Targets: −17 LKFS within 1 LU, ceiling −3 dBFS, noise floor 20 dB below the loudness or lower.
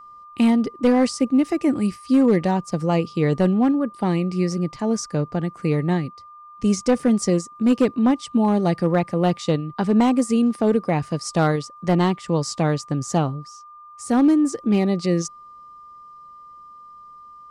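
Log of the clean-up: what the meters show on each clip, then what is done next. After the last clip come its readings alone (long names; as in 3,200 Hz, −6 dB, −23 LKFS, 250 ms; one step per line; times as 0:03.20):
share of clipped samples 0.6%; peaks flattened at −10.5 dBFS; interfering tone 1,200 Hz; level of the tone −41 dBFS; integrated loudness −21.0 LKFS; sample peak −10.5 dBFS; target loudness −17.0 LKFS
→ clipped peaks rebuilt −10.5 dBFS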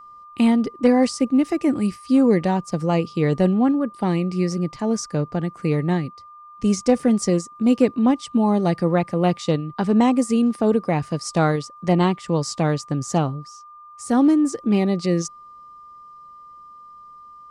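share of clipped samples 0.0%; interfering tone 1,200 Hz; level of the tone −41 dBFS
→ notch filter 1,200 Hz, Q 30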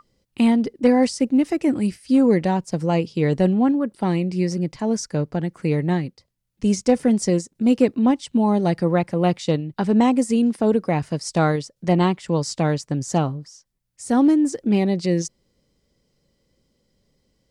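interfering tone none found; integrated loudness −20.5 LKFS; sample peak −5.0 dBFS; target loudness −17.0 LKFS
→ level +3.5 dB
brickwall limiter −3 dBFS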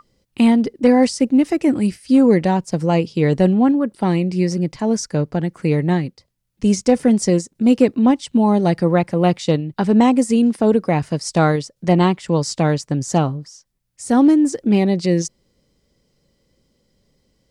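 integrated loudness −17.0 LKFS; sample peak −3.0 dBFS; background noise floor −70 dBFS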